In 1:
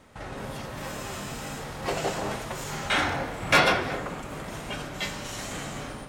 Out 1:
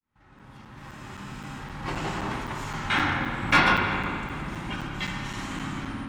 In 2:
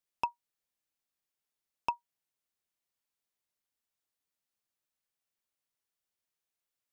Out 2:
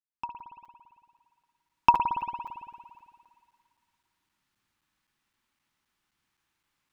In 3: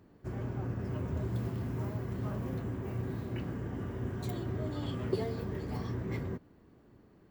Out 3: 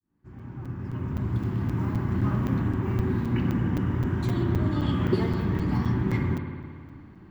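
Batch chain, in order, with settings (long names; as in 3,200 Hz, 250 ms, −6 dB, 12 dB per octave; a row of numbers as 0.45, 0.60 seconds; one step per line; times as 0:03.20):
fade in at the beginning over 2.29 s
low-pass filter 2,400 Hz 6 dB per octave
spring reverb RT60 2.1 s, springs 56 ms, chirp 30 ms, DRR 3.5 dB
floating-point word with a short mantissa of 8 bits
flat-topped bell 540 Hz −11 dB 1 octave
regular buffer underruns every 0.26 s, samples 256, zero, from 0:00.39
loudness normalisation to −27 LKFS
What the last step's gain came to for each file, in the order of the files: +2.5, +16.5, +11.0 decibels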